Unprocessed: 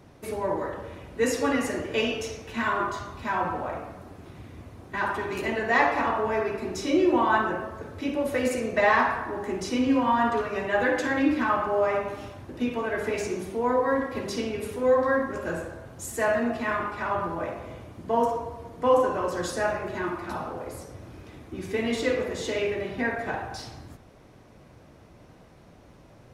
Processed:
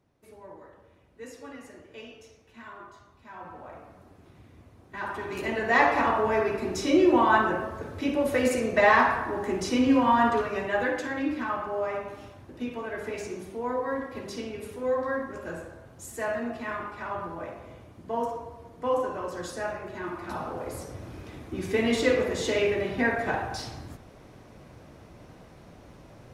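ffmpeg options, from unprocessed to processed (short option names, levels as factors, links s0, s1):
-af "volume=3.16,afade=t=in:st=3.28:d=0.71:silence=0.334965,afade=t=in:st=4.89:d=1.06:silence=0.298538,afade=t=out:st=10.24:d=0.84:silence=0.421697,afade=t=in:st=19.99:d=0.88:silence=0.375837"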